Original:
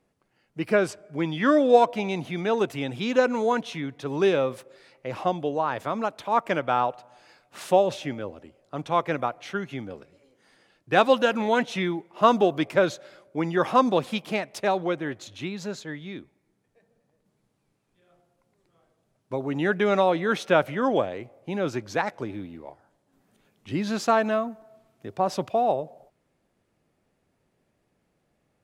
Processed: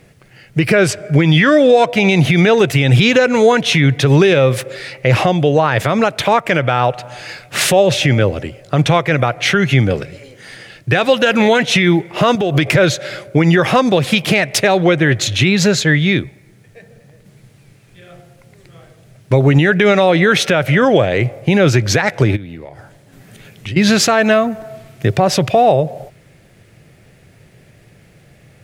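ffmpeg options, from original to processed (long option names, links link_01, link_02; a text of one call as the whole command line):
ffmpeg -i in.wav -filter_complex "[0:a]asettb=1/sr,asplit=3[link_01][link_02][link_03];[link_01]atrim=end=12.354[link_04];[link_02]atrim=start=12.35:end=12.76,asetpts=PTS-STARTPTS,afade=type=in:duration=0.004:curve=qsin,afade=type=out:start_time=0.406:duration=0.004:curve=qsin,acompressor=threshold=-28dB:ratio=5:attack=3.2:release=140:knee=1:detection=peak[link_05];[link_03]atrim=start=12.756[link_06];[link_04][link_05]acrossfade=duration=0.004:curve1=hsin:curve2=qsin[link_07];[link_07][link_06]acrossfade=duration=0.004:curve1=qsin:curve2=hsin,asplit=3[link_08][link_09][link_10];[link_08]afade=type=out:start_time=22.35:duration=0.02[link_11];[link_09]acompressor=threshold=-49dB:ratio=10:attack=3.2:release=140:knee=1:detection=peak,afade=type=in:start_time=22.35:duration=0.02,afade=type=out:start_time=23.76:duration=0.02[link_12];[link_10]afade=type=in:start_time=23.76:duration=0.02[link_13];[link_11][link_12][link_13]amix=inputs=3:normalize=0,acompressor=threshold=-31dB:ratio=2.5,equalizer=frequency=125:width_type=o:width=1:gain=9,equalizer=frequency=250:width_type=o:width=1:gain=-7,equalizer=frequency=1000:width_type=o:width=1:gain=-9,equalizer=frequency=2000:width_type=o:width=1:gain=5,alimiter=level_in=25.5dB:limit=-1dB:release=50:level=0:latency=1,volume=-1dB" out.wav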